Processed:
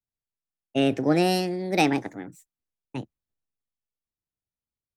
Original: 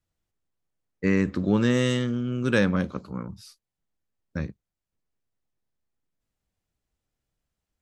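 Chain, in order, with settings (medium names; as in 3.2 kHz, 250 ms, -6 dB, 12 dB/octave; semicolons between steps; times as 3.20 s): gliding tape speed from 134% -> 181%; three bands expanded up and down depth 40%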